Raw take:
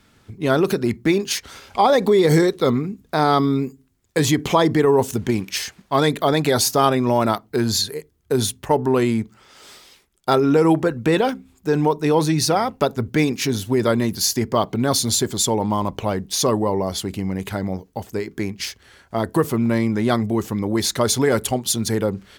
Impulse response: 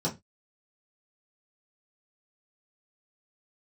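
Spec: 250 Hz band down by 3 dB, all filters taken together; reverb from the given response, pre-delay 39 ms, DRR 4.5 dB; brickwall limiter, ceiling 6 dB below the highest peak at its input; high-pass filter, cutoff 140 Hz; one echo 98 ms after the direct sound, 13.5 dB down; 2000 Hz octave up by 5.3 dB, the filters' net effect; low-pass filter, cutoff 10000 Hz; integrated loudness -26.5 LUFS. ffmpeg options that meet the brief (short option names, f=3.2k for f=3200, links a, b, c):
-filter_complex "[0:a]highpass=140,lowpass=10k,equalizer=f=250:t=o:g=-3.5,equalizer=f=2k:t=o:g=6.5,alimiter=limit=-8.5dB:level=0:latency=1,aecho=1:1:98:0.211,asplit=2[a][b];[1:a]atrim=start_sample=2205,adelay=39[c];[b][c]afir=irnorm=-1:irlink=0,volume=-12dB[d];[a][d]amix=inputs=2:normalize=0,volume=-7.5dB"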